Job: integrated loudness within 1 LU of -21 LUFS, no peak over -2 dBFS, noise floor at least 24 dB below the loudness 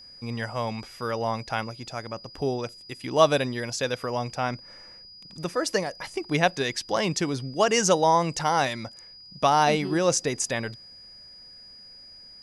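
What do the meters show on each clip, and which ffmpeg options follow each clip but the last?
steady tone 4900 Hz; tone level -45 dBFS; loudness -26.0 LUFS; peak -3.5 dBFS; loudness target -21.0 LUFS
-> -af "bandreject=f=4.9k:w=30"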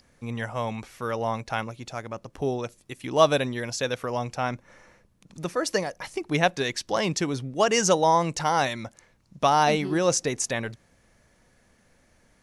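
steady tone none; loudness -26.0 LUFS; peak -3.5 dBFS; loudness target -21.0 LUFS
-> -af "volume=5dB,alimiter=limit=-2dB:level=0:latency=1"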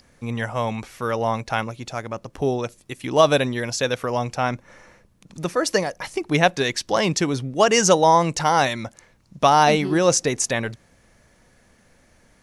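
loudness -21.0 LUFS; peak -2.0 dBFS; noise floor -58 dBFS

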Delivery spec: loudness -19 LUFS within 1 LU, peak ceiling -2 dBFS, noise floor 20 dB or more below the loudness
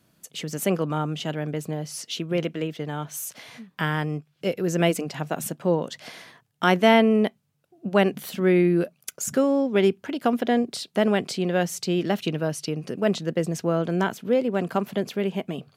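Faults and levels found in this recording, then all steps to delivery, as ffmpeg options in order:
loudness -24.5 LUFS; peak -3.5 dBFS; loudness target -19.0 LUFS
-> -af "volume=5.5dB,alimiter=limit=-2dB:level=0:latency=1"

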